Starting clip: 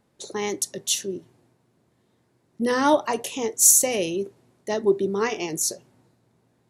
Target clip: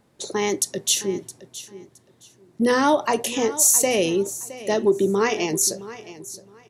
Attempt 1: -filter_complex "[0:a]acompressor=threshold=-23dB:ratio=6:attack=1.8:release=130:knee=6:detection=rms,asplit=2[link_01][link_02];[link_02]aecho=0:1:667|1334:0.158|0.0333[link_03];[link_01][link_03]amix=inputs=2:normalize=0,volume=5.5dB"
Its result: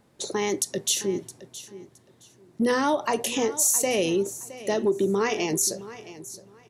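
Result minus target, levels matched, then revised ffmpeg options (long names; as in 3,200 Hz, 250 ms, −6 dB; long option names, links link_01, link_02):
downward compressor: peak gain reduction +5.5 dB
-filter_complex "[0:a]acompressor=threshold=-16.5dB:ratio=6:attack=1.8:release=130:knee=6:detection=rms,asplit=2[link_01][link_02];[link_02]aecho=0:1:667|1334:0.158|0.0333[link_03];[link_01][link_03]amix=inputs=2:normalize=0,volume=5.5dB"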